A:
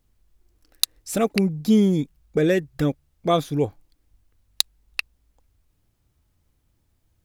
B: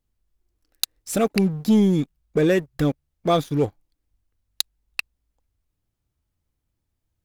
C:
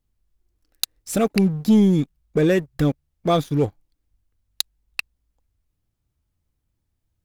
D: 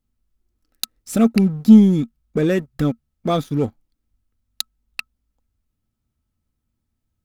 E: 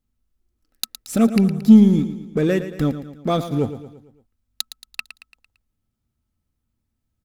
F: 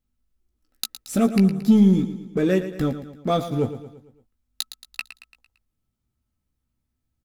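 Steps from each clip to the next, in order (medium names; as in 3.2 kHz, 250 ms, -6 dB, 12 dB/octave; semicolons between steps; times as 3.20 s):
waveshaping leveller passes 2; trim -6 dB
tone controls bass +3 dB, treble 0 dB
small resonant body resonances 230/1300 Hz, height 12 dB, ringing for 90 ms; trim -1.5 dB
feedback delay 113 ms, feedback 49%, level -12 dB; trim -1 dB
doubling 16 ms -7 dB; trim -2.5 dB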